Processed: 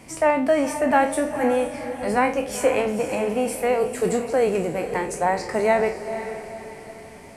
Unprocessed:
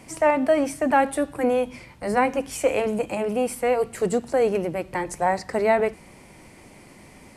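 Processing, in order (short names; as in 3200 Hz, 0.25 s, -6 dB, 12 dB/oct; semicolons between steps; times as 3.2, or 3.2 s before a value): spectral trails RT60 0.31 s; diffused feedback echo 0.495 s, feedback 44%, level -10 dB; 2.06–3.76 requantised 12-bit, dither none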